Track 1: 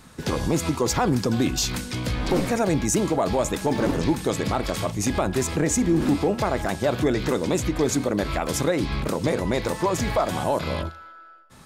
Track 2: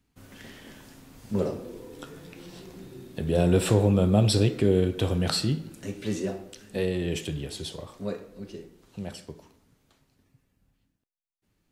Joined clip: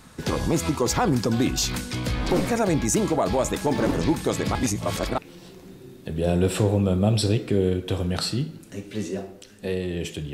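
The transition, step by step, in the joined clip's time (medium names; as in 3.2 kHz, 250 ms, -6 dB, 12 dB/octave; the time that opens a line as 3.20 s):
track 1
4.55–5.18 s: reverse
5.18 s: go over to track 2 from 2.29 s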